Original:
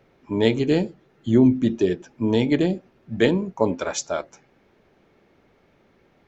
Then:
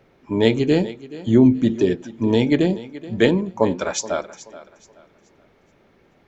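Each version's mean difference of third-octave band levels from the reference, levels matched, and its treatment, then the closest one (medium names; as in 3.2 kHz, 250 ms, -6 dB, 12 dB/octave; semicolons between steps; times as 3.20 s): 1.5 dB: thinning echo 427 ms, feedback 31%, high-pass 170 Hz, level -16.5 dB; trim +2.5 dB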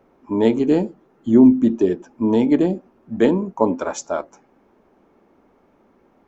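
3.5 dB: graphic EQ 125/250/1000/2000/4000 Hz -8/+7/+7/-5/-8 dB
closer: first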